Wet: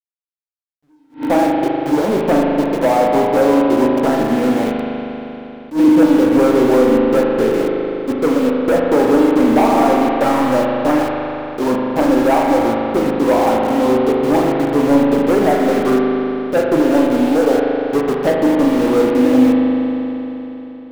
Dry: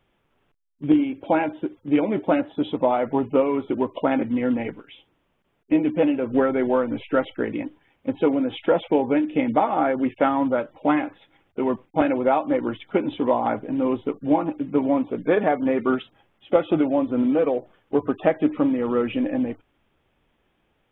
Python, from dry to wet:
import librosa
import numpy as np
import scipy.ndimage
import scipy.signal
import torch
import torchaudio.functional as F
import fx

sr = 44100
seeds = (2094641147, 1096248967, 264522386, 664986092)

y = scipy.signal.sosfilt(scipy.signal.butter(2, 1100.0, 'lowpass', fs=sr, output='sos'), x)
y = fx.low_shelf(y, sr, hz=160.0, db=-4.5)
y = fx.leveller(y, sr, passes=3)
y = np.where(np.abs(y) >= 10.0 ** (-21.0 / 20.0), y, 0.0)
y = fx.rev_spring(y, sr, rt60_s=3.6, pass_ms=(39,), chirp_ms=80, drr_db=-1.5)
y = fx.attack_slew(y, sr, db_per_s=240.0)
y = y * 10.0 ** (-2.5 / 20.0)